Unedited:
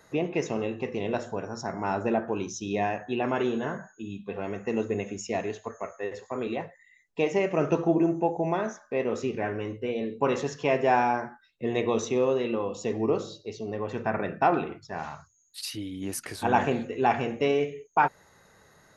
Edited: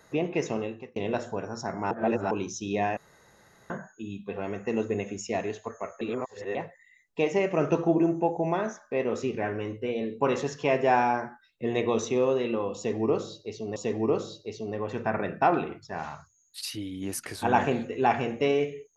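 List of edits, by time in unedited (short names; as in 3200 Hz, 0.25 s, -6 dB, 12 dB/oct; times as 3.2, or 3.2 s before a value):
0.54–0.96 fade out
1.91–2.31 reverse
2.97–3.7 room tone
6.01–6.55 reverse
12.76–13.76 loop, 2 plays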